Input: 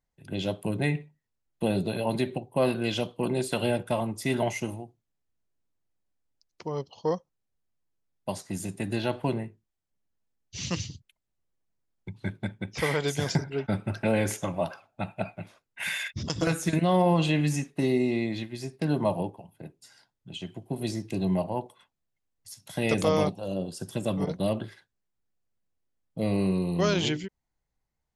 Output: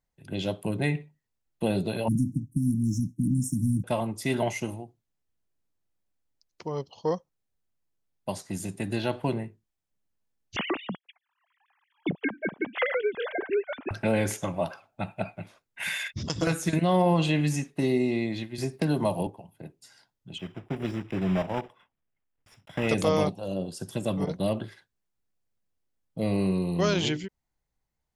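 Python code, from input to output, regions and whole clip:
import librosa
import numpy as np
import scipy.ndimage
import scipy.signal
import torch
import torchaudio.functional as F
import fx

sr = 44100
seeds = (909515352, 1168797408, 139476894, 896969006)

y = fx.chain(x, sr, fx.low_shelf(hz=200.0, db=6.5),
    fx.leveller(passes=1),
    fx.brickwall_bandstop(low_hz=320.0, high_hz=5300.0), at=(2.08, 3.84))
y = fx.chain(y, sr, fx.sine_speech(),
    fx.band_squash(depth_pct=100), at=(10.56, 13.91))
y = fx.chain(y, sr, fx.high_shelf(hz=6300.0, db=7.5),
    fx.band_squash(depth_pct=70), at=(18.58, 19.27))
y = fx.chain(y, sr, fx.block_float(bits=3),
    fx.savgol(points=25), at=(20.38, 22.89))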